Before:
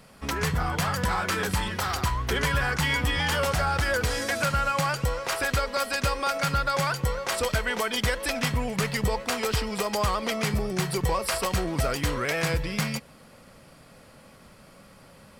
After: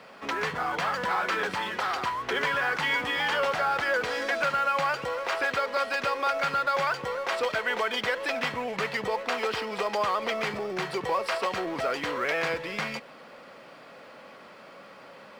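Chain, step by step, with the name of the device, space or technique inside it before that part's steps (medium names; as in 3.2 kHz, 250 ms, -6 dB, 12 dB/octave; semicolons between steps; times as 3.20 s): phone line with mismatched companding (band-pass 370–3300 Hz; companding laws mixed up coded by mu)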